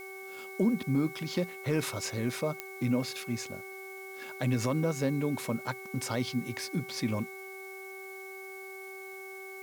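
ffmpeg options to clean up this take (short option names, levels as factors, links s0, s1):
-af "adeclick=t=4,bandreject=f=384.3:t=h:w=4,bandreject=f=768.6:t=h:w=4,bandreject=f=1152.9:t=h:w=4,bandreject=f=1537.2:t=h:w=4,bandreject=f=2200:w=30,afftdn=nr=30:nf=-44"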